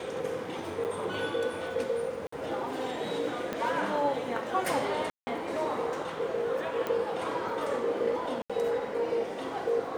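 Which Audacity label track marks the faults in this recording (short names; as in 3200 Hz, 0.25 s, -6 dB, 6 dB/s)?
0.840000	0.850000	gap 8.9 ms
2.270000	2.320000	gap 54 ms
3.530000	3.530000	pop -18 dBFS
5.100000	5.270000	gap 0.17 s
6.870000	6.870000	pop -19 dBFS
8.420000	8.500000	gap 76 ms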